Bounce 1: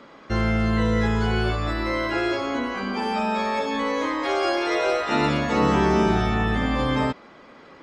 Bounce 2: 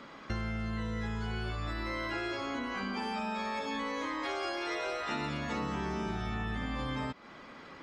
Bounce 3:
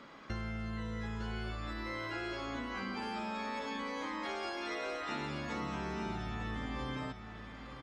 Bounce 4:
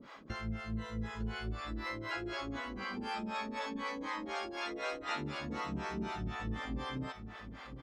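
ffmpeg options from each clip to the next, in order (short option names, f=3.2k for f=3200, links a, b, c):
-af "equalizer=f=480:w=0.84:g=-5.5,acompressor=threshold=-33dB:ratio=6"
-af "aecho=1:1:904:0.335,volume=-4dB"
-filter_complex "[0:a]acrossover=split=460[a][b];[a]aeval=exprs='val(0)*(1-1/2+1/2*cos(2*PI*4*n/s))':c=same[c];[b]aeval=exprs='val(0)*(1-1/2-1/2*cos(2*PI*4*n/s))':c=same[d];[c][d]amix=inputs=2:normalize=0,volume=4.5dB"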